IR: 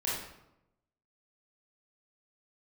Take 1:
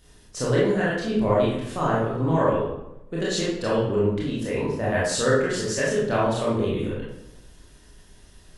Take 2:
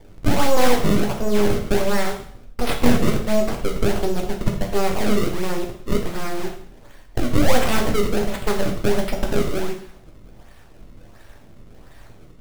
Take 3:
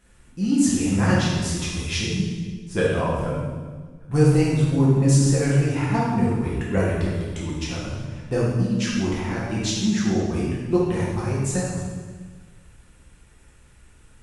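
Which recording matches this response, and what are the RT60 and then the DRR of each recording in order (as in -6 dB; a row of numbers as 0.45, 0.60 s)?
1; 0.85, 0.60, 1.5 s; -7.5, 1.5, -7.0 dB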